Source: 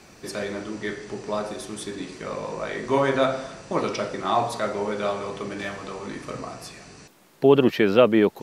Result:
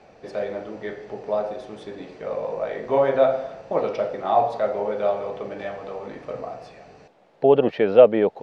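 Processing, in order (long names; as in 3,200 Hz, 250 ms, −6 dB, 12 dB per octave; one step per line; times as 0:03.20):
low-pass filter 3,300 Hz 12 dB per octave
flat-topped bell 610 Hz +10.5 dB 1.1 octaves
level −5 dB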